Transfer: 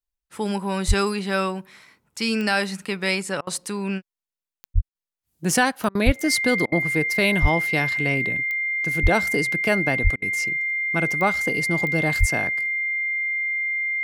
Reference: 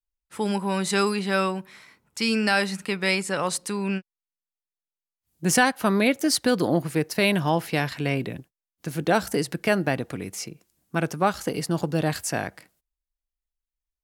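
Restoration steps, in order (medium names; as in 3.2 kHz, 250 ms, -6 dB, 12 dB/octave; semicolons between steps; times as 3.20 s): de-click; band-stop 2.1 kHz, Q 30; de-plosive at 0.87/4.74/6.05/7.41/9.02/10.03/12.19 s; interpolate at 3.41/4.89/5.89/6.66/10.16 s, 59 ms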